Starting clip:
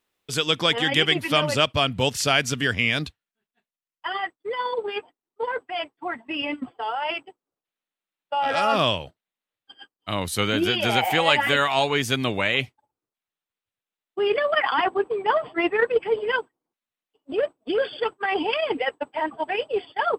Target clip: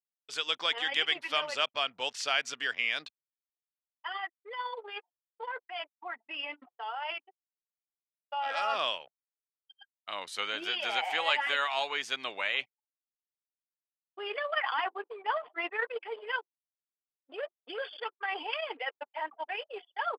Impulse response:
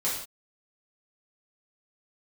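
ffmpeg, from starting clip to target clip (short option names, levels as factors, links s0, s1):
-af "anlmdn=0.398,highpass=740,lowpass=5900,volume=0.422"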